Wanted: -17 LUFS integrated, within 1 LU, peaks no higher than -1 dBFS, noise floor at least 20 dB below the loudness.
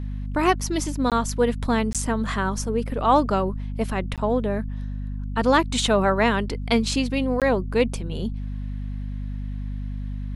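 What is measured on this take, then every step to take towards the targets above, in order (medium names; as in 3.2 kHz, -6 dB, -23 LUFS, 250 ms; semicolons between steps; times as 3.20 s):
dropouts 4; longest dropout 17 ms; hum 50 Hz; highest harmonic 250 Hz; hum level -27 dBFS; loudness -24.0 LUFS; peak level -5.5 dBFS; loudness target -17.0 LUFS
-> interpolate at 1.10/1.93/4.16/7.40 s, 17 ms; de-hum 50 Hz, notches 5; trim +7 dB; peak limiter -1 dBFS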